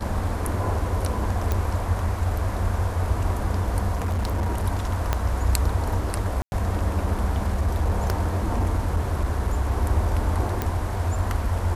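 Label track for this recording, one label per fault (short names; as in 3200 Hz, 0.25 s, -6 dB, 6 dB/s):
1.520000	1.520000	pop -11 dBFS
3.940000	4.650000	clipped -21 dBFS
5.130000	5.130000	pop -8 dBFS
6.420000	6.520000	gap 0.101 s
7.470000	9.780000	clipped -17 dBFS
10.620000	10.620000	pop -11 dBFS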